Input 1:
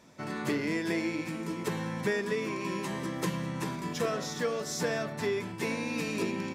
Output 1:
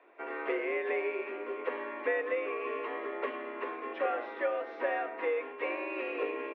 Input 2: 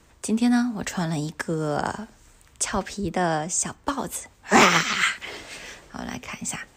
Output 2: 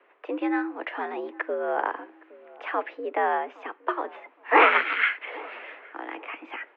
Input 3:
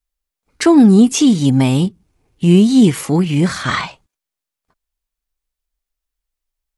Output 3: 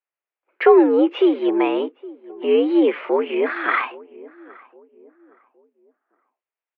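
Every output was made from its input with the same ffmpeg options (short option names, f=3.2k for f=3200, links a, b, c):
-filter_complex "[0:a]asplit=2[a][b];[b]adelay=816,lowpass=f=910:p=1,volume=-20dB,asplit=2[c][d];[d]adelay=816,lowpass=f=910:p=1,volume=0.39,asplit=2[e][f];[f]adelay=816,lowpass=f=910:p=1,volume=0.39[g];[c][e][g]amix=inputs=3:normalize=0[h];[a][h]amix=inputs=2:normalize=0,highpass=f=290:t=q:w=0.5412,highpass=f=290:t=q:w=1.307,lowpass=f=2.6k:t=q:w=0.5176,lowpass=f=2.6k:t=q:w=0.7071,lowpass=f=2.6k:t=q:w=1.932,afreqshift=78"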